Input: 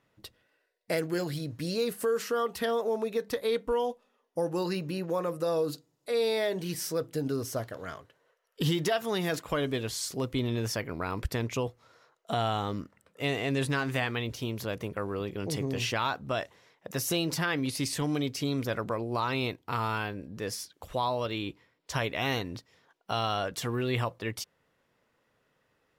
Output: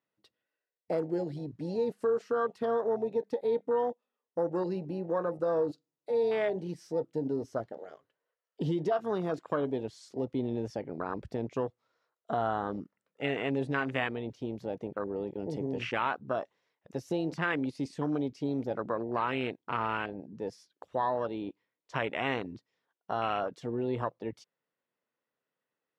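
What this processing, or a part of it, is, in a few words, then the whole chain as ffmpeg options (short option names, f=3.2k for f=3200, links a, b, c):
over-cleaned archive recording: -af "highpass=180,lowpass=6.2k,afwtdn=0.0224"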